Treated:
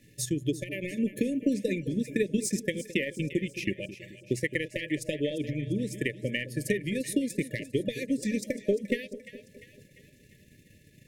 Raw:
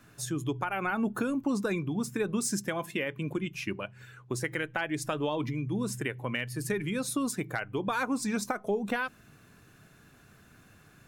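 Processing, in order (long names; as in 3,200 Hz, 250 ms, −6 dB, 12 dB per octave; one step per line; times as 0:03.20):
transient designer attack +6 dB, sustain −11 dB
echo with a time of its own for lows and highs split 700 Hz, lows 215 ms, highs 347 ms, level −13.5 dB
brick-wall band-stop 620–1,700 Hz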